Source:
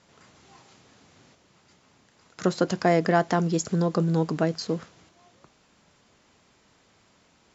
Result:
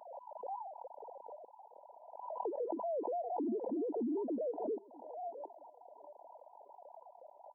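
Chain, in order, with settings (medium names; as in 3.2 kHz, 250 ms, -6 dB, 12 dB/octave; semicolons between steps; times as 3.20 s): formants replaced by sine waves; compression 3:1, threshold -51 dBFS, peak gain reduction 25 dB; peak limiter -47 dBFS, peak gain reduction 12.5 dB; FFT band-pass 210–1000 Hz; on a send: thinning echo 638 ms, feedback 65%, high-pass 690 Hz, level -18.5 dB; on the sum: swell ahead of each attack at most 47 dB/s; trim +15.5 dB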